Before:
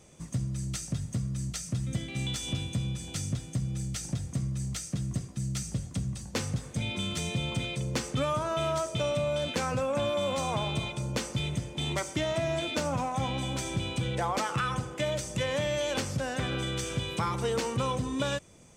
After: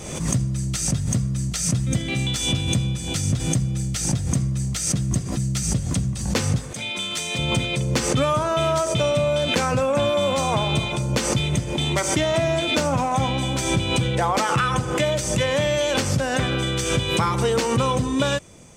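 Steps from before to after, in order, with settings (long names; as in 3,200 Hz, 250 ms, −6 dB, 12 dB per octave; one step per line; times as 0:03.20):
0:06.73–0:07.39: high-pass filter 800 Hz 6 dB per octave
background raised ahead of every attack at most 54 dB per second
level +8.5 dB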